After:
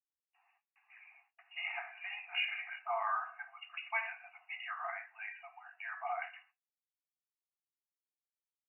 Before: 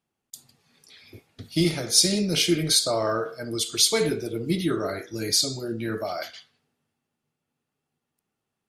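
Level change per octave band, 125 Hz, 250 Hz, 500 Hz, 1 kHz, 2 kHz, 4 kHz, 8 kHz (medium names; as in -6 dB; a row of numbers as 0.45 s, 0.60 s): under -40 dB, under -40 dB, -21.5 dB, -4.0 dB, -3.0 dB, -22.0 dB, under -40 dB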